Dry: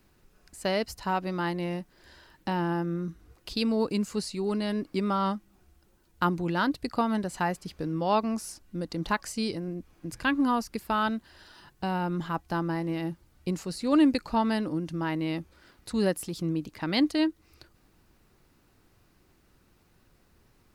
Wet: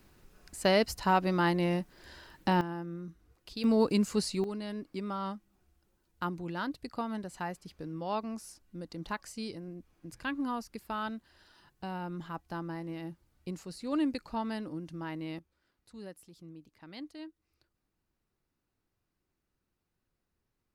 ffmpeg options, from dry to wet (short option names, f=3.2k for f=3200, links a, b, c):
-af "asetnsamples=n=441:p=0,asendcmd='2.61 volume volume -9.5dB;3.64 volume volume 1dB;4.44 volume volume -9dB;15.39 volume volume -20dB',volume=2.5dB"